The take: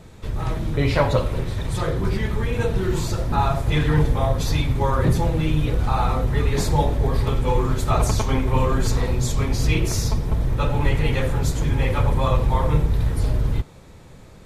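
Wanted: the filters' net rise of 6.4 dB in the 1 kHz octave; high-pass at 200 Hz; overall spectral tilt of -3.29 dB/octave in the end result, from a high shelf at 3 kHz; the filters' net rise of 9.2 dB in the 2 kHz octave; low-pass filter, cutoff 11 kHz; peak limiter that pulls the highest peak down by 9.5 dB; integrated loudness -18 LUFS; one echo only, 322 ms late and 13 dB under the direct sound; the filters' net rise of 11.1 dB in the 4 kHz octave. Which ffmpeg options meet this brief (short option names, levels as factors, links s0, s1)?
-af "highpass=200,lowpass=11000,equalizer=f=1000:t=o:g=5.5,equalizer=f=2000:t=o:g=6,highshelf=f=3000:g=4,equalizer=f=4000:t=o:g=8.5,alimiter=limit=0.266:level=0:latency=1,aecho=1:1:322:0.224,volume=1.68"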